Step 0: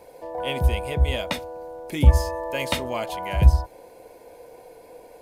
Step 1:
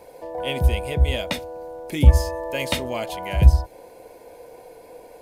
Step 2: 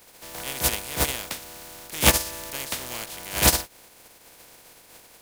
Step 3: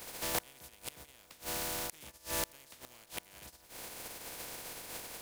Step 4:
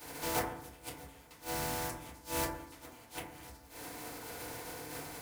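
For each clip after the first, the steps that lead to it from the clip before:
dynamic EQ 1100 Hz, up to -5 dB, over -43 dBFS, Q 1.4; gain +2 dB
spectral contrast lowered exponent 0.24; gain -6.5 dB
compressor 5:1, threshold -29 dBFS, peak gain reduction 16 dB; flipped gate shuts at -24 dBFS, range -27 dB; gain +5 dB
FDN reverb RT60 0.71 s, low-frequency decay 1.35×, high-frequency decay 0.3×, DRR -9.5 dB; gain -7.5 dB

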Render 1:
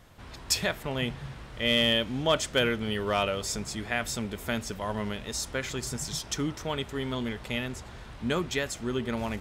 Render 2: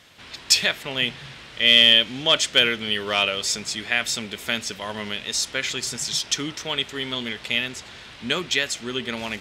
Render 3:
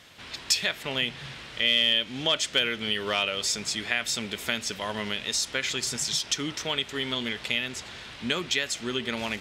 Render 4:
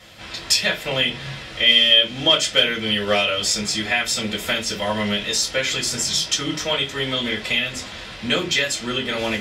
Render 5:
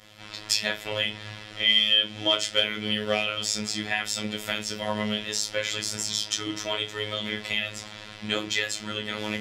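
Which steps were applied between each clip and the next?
weighting filter D; gain +1 dB
compressor 2:1, threshold -26 dBFS, peak gain reduction 9 dB
reverb RT60 0.20 s, pre-delay 3 ms, DRR -4.5 dB
robotiser 106 Hz; gain -5 dB

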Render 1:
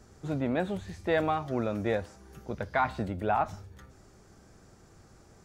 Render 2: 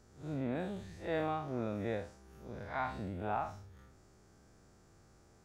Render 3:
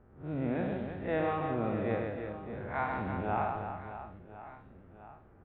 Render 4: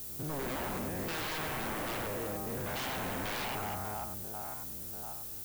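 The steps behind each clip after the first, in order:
time blur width 0.113 s; gain -5.5 dB
low-pass opened by the level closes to 1400 Hz, open at -31.5 dBFS; steep low-pass 3200 Hz 36 dB/oct; reverse bouncing-ball echo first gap 0.13 s, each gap 1.5×, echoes 5; gain +3 dB
stepped spectrum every 0.1 s; added noise violet -48 dBFS; wavefolder -36.5 dBFS; gain +5 dB

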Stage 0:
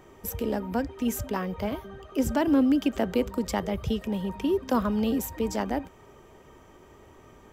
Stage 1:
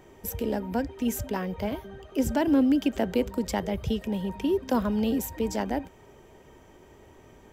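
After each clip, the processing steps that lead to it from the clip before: bell 1200 Hz -9.5 dB 0.21 oct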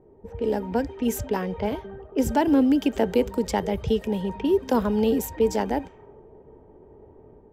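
AGC gain up to 4.5 dB; small resonant body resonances 440/860 Hz, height 8 dB; low-pass opened by the level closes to 540 Hz, open at -19 dBFS; gain -2.5 dB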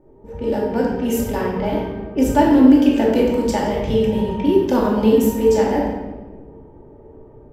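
shoebox room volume 750 m³, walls mixed, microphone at 2.5 m

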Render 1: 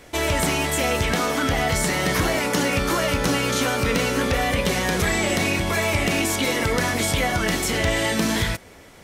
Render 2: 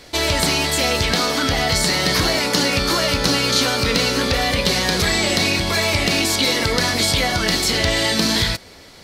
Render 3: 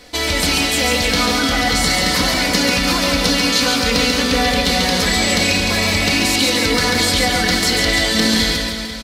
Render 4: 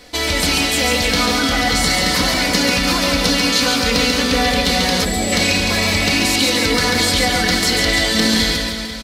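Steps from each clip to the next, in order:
bell 4400 Hz +13.5 dB 0.6 oct; gain +1.5 dB
comb 4 ms, depth 56%; on a send: reverse bouncing-ball echo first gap 0.14 s, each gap 1.15×, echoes 5; on the sum: gain -1 dB
spectral gain 5.04–5.32, 820–7100 Hz -8 dB; AAC 192 kbps 48000 Hz

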